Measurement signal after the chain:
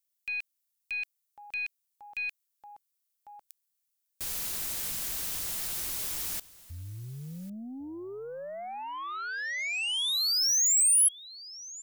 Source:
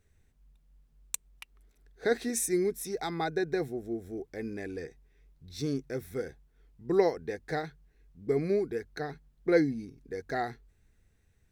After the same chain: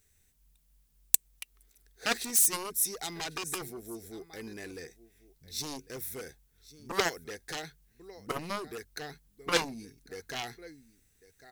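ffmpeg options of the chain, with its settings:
ffmpeg -i in.wav -af "aecho=1:1:1100:0.1,aeval=exprs='0.251*(cos(1*acos(clip(val(0)/0.251,-1,1)))-cos(1*PI/2))+0.0224*(cos(2*acos(clip(val(0)/0.251,-1,1)))-cos(2*PI/2))+0.0141*(cos(4*acos(clip(val(0)/0.251,-1,1)))-cos(4*PI/2))+0.0794*(cos(7*acos(clip(val(0)/0.251,-1,1)))-cos(7*PI/2))':channel_layout=same,crystalizer=i=6.5:c=0,volume=-7.5dB" out.wav

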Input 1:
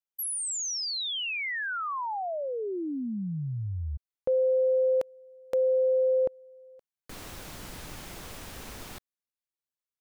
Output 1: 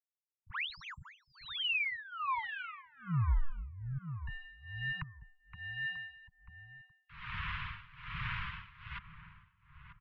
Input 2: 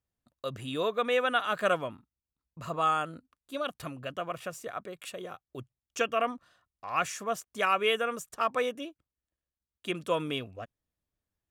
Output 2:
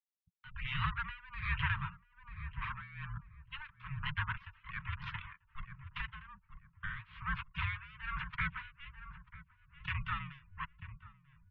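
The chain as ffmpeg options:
ffmpeg -i in.wav -filter_complex "[0:a]acompressor=threshold=-30dB:ratio=6:attack=16:release=33:knee=6:detection=peak,aresample=16000,aeval=exprs='abs(val(0))':channel_layout=same,aresample=44100,flanger=delay=2.1:depth=6.6:regen=-42:speed=0.2:shape=triangular,acrossover=split=200[link_01][link_02];[link_02]acompressor=threshold=-40dB:ratio=6:attack=0.25:release=293:knee=2.83:detection=peak[link_03];[link_01][link_03]amix=inputs=2:normalize=0,highpass=94,afftfilt=real='re*gte(hypot(re,im),0.00126)':imag='im*gte(hypot(re,im),0.00126)':win_size=1024:overlap=0.75,asuperstop=centerf=750:order=20:qfactor=0.93,asplit=2[link_04][link_05];[link_05]adelay=940,lowpass=frequency=1100:poles=1,volume=-12dB,asplit=2[link_06][link_07];[link_07]adelay=940,lowpass=frequency=1100:poles=1,volume=0.34,asplit=2[link_08][link_09];[link_09]adelay=940,lowpass=frequency=1100:poles=1,volume=0.34[link_10];[link_04][link_06][link_08][link_10]amix=inputs=4:normalize=0,asplit=2[link_11][link_12];[link_12]alimiter=level_in=20dB:limit=-24dB:level=0:latency=1:release=466,volume=-20dB,volume=0.5dB[link_13];[link_11][link_13]amix=inputs=2:normalize=0,highpass=frequency=160:width_type=q:width=0.5412,highpass=frequency=160:width_type=q:width=1.307,lowpass=frequency=3100:width_type=q:width=0.5176,lowpass=frequency=3100:width_type=q:width=0.7071,lowpass=frequency=3100:width_type=q:width=1.932,afreqshift=-280,tremolo=f=1.2:d=0.92,volume=13dB" out.wav

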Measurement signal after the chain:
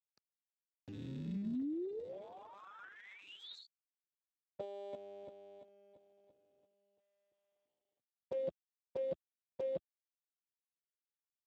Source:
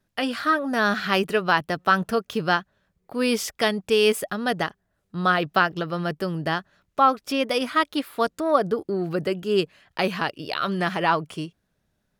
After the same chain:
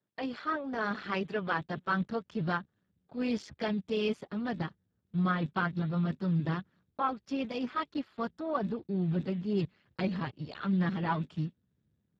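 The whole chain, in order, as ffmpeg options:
ffmpeg -i in.wav -af "asubboost=boost=9.5:cutoff=130,lowpass=3500,volume=-8.5dB" -ar 32000 -c:a libspeex -b:a 8k out.spx

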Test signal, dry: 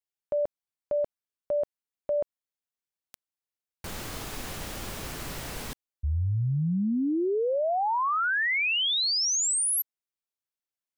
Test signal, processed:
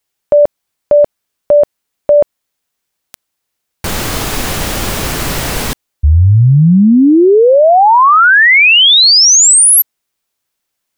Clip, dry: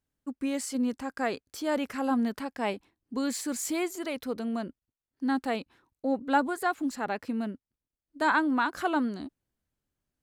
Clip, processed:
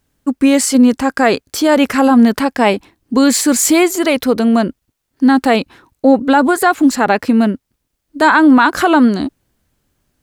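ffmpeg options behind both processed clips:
ffmpeg -i in.wav -af "alimiter=level_in=21dB:limit=-1dB:release=50:level=0:latency=1,volume=-1dB" out.wav

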